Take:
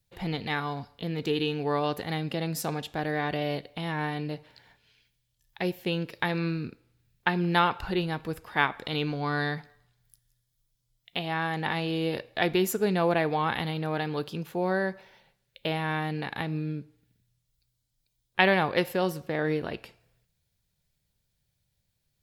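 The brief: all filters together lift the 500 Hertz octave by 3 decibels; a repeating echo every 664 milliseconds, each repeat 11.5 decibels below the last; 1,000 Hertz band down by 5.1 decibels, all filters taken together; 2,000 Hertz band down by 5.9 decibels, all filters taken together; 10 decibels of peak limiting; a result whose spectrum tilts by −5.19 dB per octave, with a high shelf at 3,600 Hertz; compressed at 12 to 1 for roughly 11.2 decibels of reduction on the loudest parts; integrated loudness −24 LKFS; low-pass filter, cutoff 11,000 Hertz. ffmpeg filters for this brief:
ffmpeg -i in.wav -af "lowpass=11000,equalizer=frequency=500:width_type=o:gain=6,equalizer=frequency=1000:width_type=o:gain=-9,equalizer=frequency=2000:width_type=o:gain=-7,highshelf=frequency=3600:gain=8,acompressor=threshold=-29dB:ratio=12,alimiter=level_in=1.5dB:limit=-24dB:level=0:latency=1,volume=-1.5dB,aecho=1:1:664|1328|1992:0.266|0.0718|0.0194,volume=13dB" out.wav

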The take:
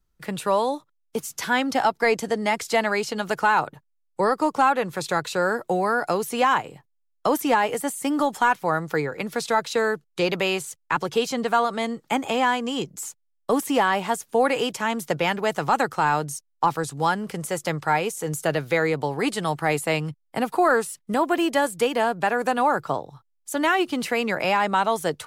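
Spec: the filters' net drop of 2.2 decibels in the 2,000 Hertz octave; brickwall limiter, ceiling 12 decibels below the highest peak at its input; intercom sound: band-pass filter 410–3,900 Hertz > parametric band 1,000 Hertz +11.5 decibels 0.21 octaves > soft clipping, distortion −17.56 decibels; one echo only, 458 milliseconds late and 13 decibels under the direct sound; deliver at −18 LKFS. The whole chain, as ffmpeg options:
ffmpeg -i in.wav -af "equalizer=frequency=2000:width_type=o:gain=-3,alimiter=limit=-21.5dB:level=0:latency=1,highpass=410,lowpass=3900,equalizer=frequency=1000:width_type=o:width=0.21:gain=11.5,aecho=1:1:458:0.224,asoftclip=threshold=-20.5dB,volume=14.5dB" out.wav

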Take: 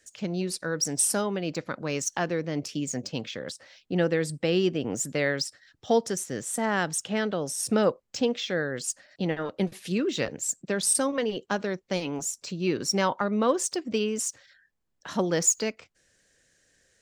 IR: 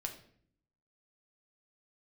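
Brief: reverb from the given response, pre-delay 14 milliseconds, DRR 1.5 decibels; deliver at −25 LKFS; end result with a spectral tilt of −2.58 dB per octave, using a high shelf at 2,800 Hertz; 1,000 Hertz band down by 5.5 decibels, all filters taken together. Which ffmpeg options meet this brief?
-filter_complex "[0:a]equalizer=frequency=1000:width_type=o:gain=-8.5,highshelf=frequency=2800:gain=6.5,asplit=2[link_01][link_02];[1:a]atrim=start_sample=2205,adelay=14[link_03];[link_02][link_03]afir=irnorm=-1:irlink=0,volume=-0.5dB[link_04];[link_01][link_04]amix=inputs=2:normalize=0,volume=-1.5dB"

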